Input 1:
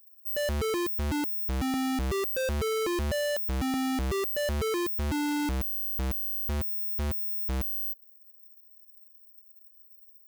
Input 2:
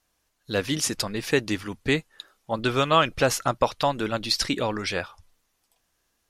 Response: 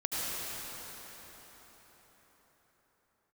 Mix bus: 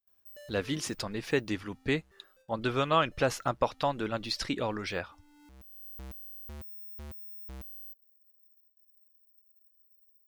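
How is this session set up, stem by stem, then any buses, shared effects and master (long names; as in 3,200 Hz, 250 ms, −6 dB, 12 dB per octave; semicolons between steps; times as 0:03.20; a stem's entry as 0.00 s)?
−10.0 dB, 0.00 s, no send, downward compressor 4 to 1, threshold −34 dBFS, peak gain reduction 4 dB; automatic ducking −22 dB, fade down 1.45 s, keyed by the second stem
−5.5 dB, 0.00 s, no send, high-shelf EQ 4,900 Hz −9 dB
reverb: not used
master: noise gate with hold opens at −57 dBFS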